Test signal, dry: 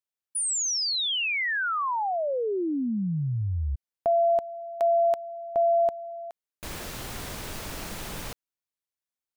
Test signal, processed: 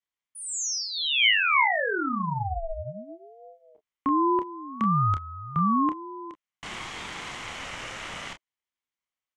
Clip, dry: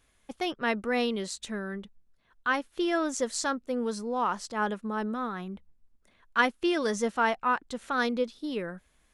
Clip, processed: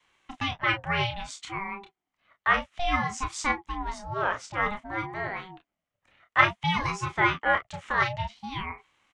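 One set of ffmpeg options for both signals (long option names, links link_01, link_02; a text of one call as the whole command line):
ffmpeg -i in.wav -filter_complex "[0:a]highpass=frequency=130:width=0.5412,highpass=frequency=130:width=1.3066,equalizer=frequency=140:width_type=q:width=4:gain=-7,equalizer=frequency=1600:width_type=q:width=4:gain=8,equalizer=frequency=2600:width_type=q:width=4:gain=9,equalizer=frequency=4500:width_type=q:width=4:gain=-8,lowpass=frequency=7300:width=0.5412,lowpass=frequency=7300:width=1.3066,acrossover=split=210|610|1600[link_01][link_02][link_03][link_04];[link_01]acompressor=threshold=-51dB:ratio=4:release=754[link_05];[link_05][link_02][link_03][link_04]amix=inputs=4:normalize=0,aecho=1:1:29|41:0.473|0.15,adynamicequalizer=threshold=0.00562:dfrequency=200:dqfactor=0.92:tfrequency=200:tqfactor=0.92:attack=5:release=100:ratio=0.375:range=3:mode=cutabove:tftype=bell,aeval=exprs='val(0)*sin(2*PI*460*n/s+460*0.3/0.57*sin(2*PI*0.57*n/s))':channel_layout=same,volume=2dB" out.wav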